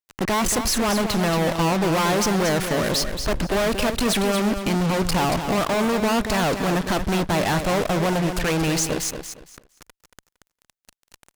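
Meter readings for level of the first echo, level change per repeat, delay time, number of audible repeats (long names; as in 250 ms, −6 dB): −8.0 dB, −12.5 dB, 230 ms, 3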